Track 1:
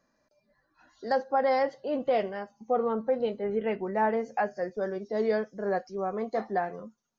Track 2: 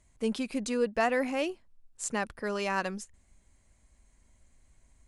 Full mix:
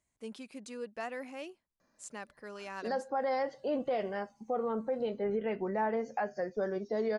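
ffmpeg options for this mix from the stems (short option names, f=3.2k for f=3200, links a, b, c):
-filter_complex "[0:a]alimiter=limit=-24dB:level=0:latency=1:release=146,adelay=1800,volume=-0.5dB[a];[1:a]highpass=f=190:p=1,volume=-12dB[b];[a][b]amix=inputs=2:normalize=0"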